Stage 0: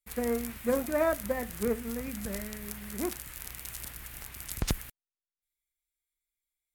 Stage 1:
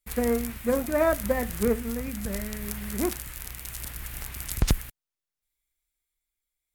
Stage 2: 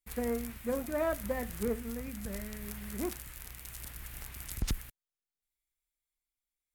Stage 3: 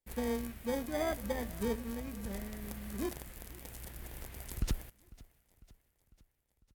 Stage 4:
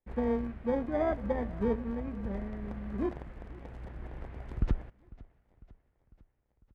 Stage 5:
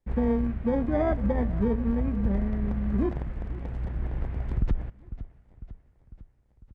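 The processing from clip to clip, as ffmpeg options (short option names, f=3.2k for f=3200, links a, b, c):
-af "lowshelf=f=110:g=6.5,tremolo=f=0.7:d=0.3,volume=5.5dB"
-af "asoftclip=type=tanh:threshold=-14.5dB,volume=-7.5dB"
-filter_complex "[0:a]aecho=1:1:500|1000|1500|2000:0.0794|0.0453|0.0258|0.0147,asplit=2[a][b];[b]acrusher=samples=32:mix=1:aa=0.000001,volume=-3dB[c];[a][c]amix=inputs=2:normalize=0,volume=-5dB"
-af "lowpass=1.4k,volume=5dB"
-af "bass=f=250:g=8,treble=f=4k:g=-2,aresample=22050,aresample=44100,alimiter=limit=-21.5dB:level=0:latency=1:release=123,volume=5dB"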